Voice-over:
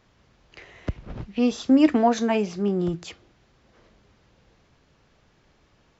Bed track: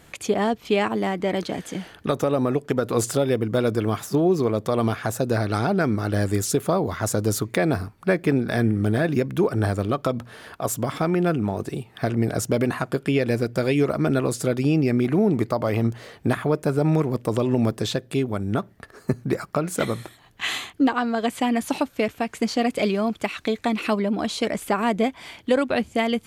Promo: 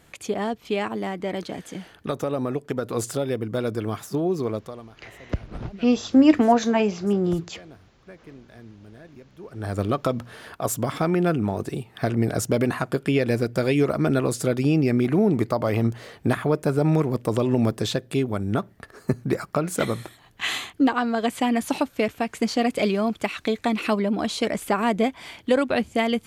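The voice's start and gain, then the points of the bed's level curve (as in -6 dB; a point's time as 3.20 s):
4.45 s, +2.0 dB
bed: 4.55 s -4.5 dB
4.89 s -24.5 dB
9.37 s -24.5 dB
9.79 s 0 dB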